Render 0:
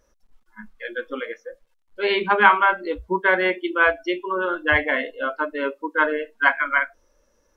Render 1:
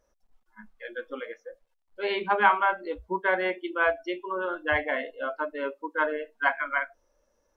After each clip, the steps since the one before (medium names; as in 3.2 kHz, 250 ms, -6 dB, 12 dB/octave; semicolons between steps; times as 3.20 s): peaking EQ 710 Hz +7 dB 0.77 oct; trim -8.5 dB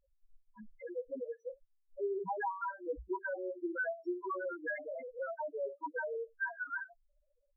compression 3:1, threshold -33 dBFS, peak gain reduction 14 dB; loudest bins only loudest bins 2; trim +1.5 dB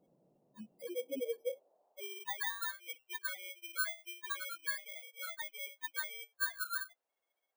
bit-reversed sample order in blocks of 16 samples; band noise 140–680 Hz -73 dBFS; high-pass sweep 130 Hz -> 1.7 kHz, 0.54–2.47 s; trim -1 dB